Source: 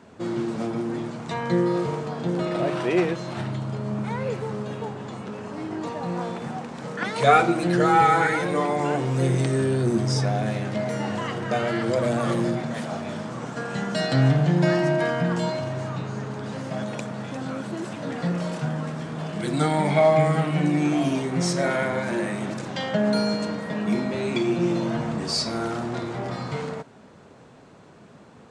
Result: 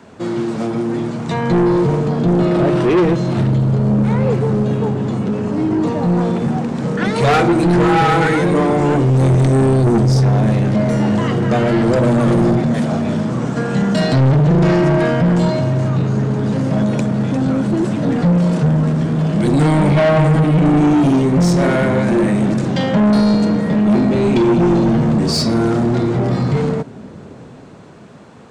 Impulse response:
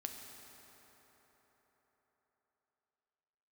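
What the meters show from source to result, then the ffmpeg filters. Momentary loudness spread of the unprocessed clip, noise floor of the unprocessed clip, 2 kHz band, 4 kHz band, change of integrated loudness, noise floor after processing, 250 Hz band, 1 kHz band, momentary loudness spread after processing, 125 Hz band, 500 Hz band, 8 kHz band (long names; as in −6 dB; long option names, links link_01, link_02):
12 LU, −49 dBFS, +4.5 dB, +5.0 dB, +10.0 dB, −36 dBFS, +12.0 dB, +4.5 dB, 6 LU, +12.0 dB, +8.0 dB, +4.0 dB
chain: -filter_complex "[0:a]acrossover=split=420|840[link_01][link_02][link_03];[link_01]dynaudnorm=framelen=310:gausssize=9:maxgain=11.5dB[link_04];[link_04][link_02][link_03]amix=inputs=3:normalize=0,asoftclip=type=tanh:threshold=-17dB,volume=7.5dB"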